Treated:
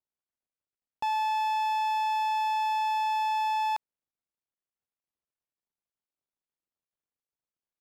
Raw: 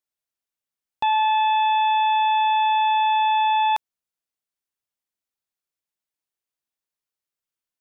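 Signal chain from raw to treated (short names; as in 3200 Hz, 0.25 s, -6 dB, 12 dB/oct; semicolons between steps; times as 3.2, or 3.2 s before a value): median filter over 25 samples; limiter -27 dBFS, peak gain reduction 8.5 dB; gain +1 dB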